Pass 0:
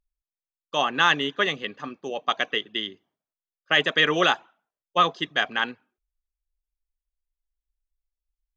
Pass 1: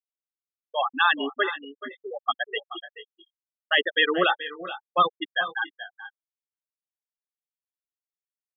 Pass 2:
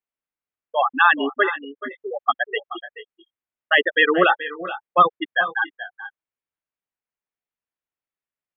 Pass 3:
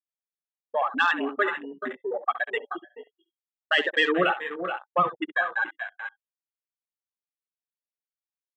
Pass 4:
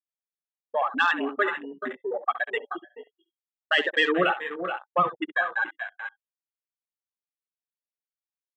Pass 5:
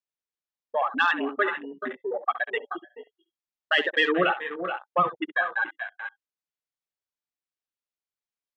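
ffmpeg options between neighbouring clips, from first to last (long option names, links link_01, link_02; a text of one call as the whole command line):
ffmpeg -i in.wav -af "afftfilt=real='re*gte(hypot(re,im),0.224)':imag='im*gte(hypot(re,im),0.224)':win_size=1024:overlap=0.75,aecho=1:1:429|450:0.2|0.112,agate=range=-33dB:threshold=-48dB:ratio=3:detection=peak" out.wav
ffmpeg -i in.wav -af "lowpass=frequency=2700:width=0.5412,lowpass=frequency=2700:width=1.3066,volume=6dB" out.wav
ffmpeg -i in.wav -filter_complex "[0:a]acrossover=split=230|3000[link_01][link_02][link_03];[link_02]acompressor=threshold=-27dB:ratio=2[link_04];[link_01][link_04][link_03]amix=inputs=3:normalize=0,asplit=2[link_05][link_06];[link_06]aecho=0:1:13|67:0.2|0.237[link_07];[link_05][link_07]amix=inputs=2:normalize=0,afwtdn=0.0224" out.wav
ffmpeg -i in.wav -af anull out.wav
ffmpeg -i in.wav -af "lowpass=6200" out.wav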